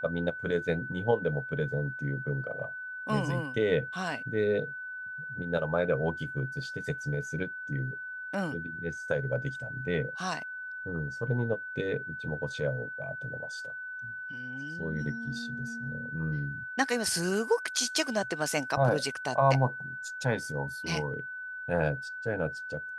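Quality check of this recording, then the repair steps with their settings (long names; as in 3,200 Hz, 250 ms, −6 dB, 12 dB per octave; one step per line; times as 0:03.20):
whistle 1,500 Hz −37 dBFS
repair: notch filter 1,500 Hz, Q 30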